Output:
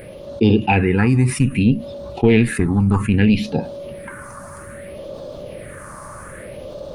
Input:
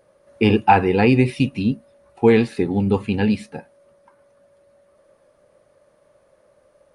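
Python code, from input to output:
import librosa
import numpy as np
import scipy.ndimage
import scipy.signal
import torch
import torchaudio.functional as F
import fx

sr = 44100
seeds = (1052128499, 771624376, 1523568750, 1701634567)

y = fx.rider(x, sr, range_db=10, speed_s=0.5)
y = fx.tube_stage(y, sr, drive_db=7.0, bias=0.55, at=(1.33, 3.51))
y = fx.phaser_stages(y, sr, stages=4, low_hz=490.0, high_hz=1800.0, hz=0.62, feedback_pct=45)
y = fx.env_flatten(y, sr, amount_pct=50)
y = y * 10.0 ** (3.0 / 20.0)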